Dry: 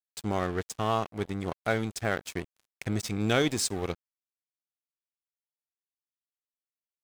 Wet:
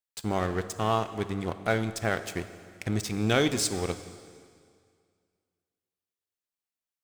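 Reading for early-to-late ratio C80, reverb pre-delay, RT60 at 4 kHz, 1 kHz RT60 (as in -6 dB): 13.0 dB, 5 ms, 2.0 s, 2.1 s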